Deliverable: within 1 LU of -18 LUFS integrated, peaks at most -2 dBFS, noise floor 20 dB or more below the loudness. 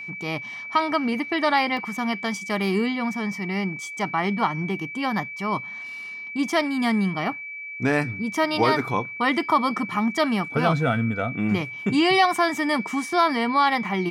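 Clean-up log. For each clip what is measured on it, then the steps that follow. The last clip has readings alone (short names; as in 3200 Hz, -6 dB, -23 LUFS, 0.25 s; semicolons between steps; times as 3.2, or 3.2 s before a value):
dropouts 1; longest dropout 1.4 ms; steady tone 2300 Hz; tone level -33 dBFS; loudness -24.0 LUFS; peak -8.5 dBFS; loudness target -18.0 LUFS
-> interpolate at 1.77, 1.4 ms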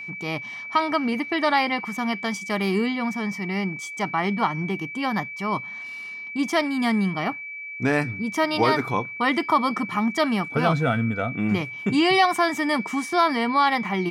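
dropouts 0; steady tone 2300 Hz; tone level -33 dBFS
-> notch 2300 Hz, Q 30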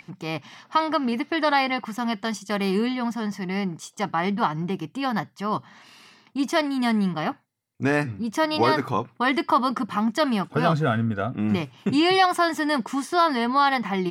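steady tone none; loudness -24.0 LUFS; peak -8.5 dBFS; loudness target -18.0 LUFS
-> gain +6 dB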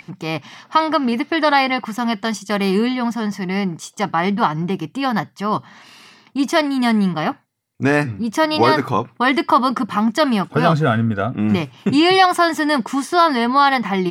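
loudness -18.0 LUFS; peak -2.5 dBFS; noise floor -54 dBFS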